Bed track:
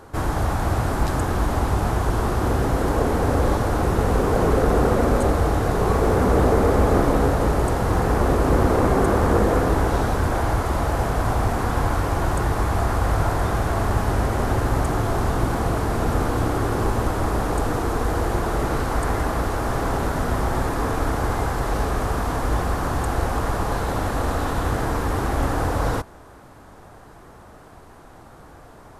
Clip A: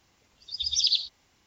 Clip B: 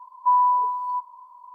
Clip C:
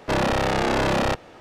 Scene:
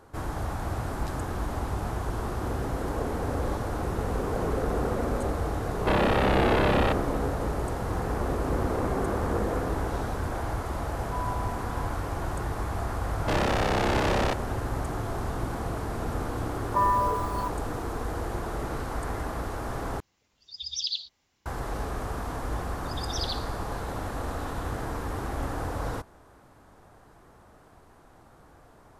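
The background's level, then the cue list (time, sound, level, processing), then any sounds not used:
bed track -9.5 dB
5.78 s: add C -2.5 dB + inverse Chebyshev low-pass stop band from 11 kHz, stop band 60 dB
10.86 s: add B -17.5 dB + hysteresis with a dead band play -41 dBFS
13.19 s: add C -4 dB + loudspeaker Doppler distortion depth 1 ms
16.49 s: add B -5 dB + spectral peaks clipped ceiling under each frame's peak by 29 dB
20.00 s: replace with A -7 dB
22.37 s: add A -3.5 dB + feedback comb 74 Hz, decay 1.5 s

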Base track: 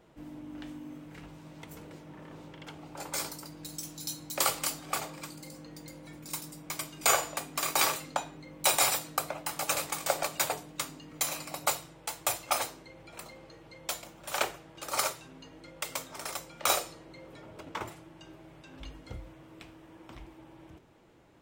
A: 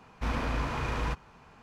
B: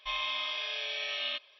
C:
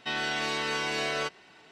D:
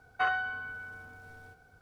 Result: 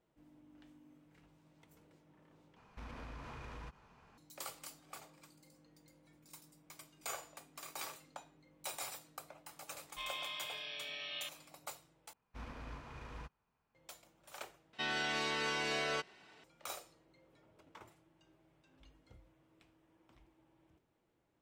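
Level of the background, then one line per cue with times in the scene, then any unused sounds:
base track -18.5 dB
2.56 s: replace with A -9 dB + compression 4:1, threshold -37 dBFS
9.91 s: add B -9.5 dB
12.13 s: replace with A -16.5 dB + upward expansion, over -51 dBFS
14.73 s: replace with C -6 dB
not used: D

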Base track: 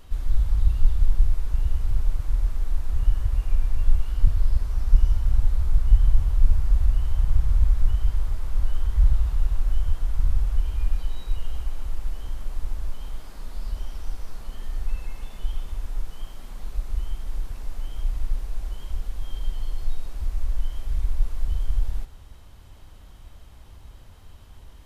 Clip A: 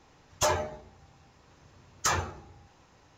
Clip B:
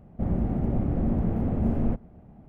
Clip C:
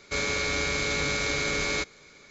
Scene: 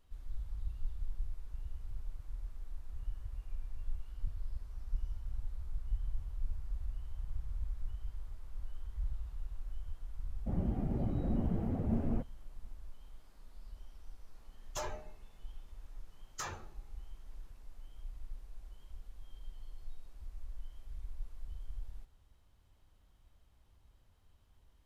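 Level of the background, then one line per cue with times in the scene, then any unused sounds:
base track -20 dB
10.27 s: add B -6 dB + expander on every frequency bin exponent 1.5
14.34 s: add A -14.5 dB
not used: C

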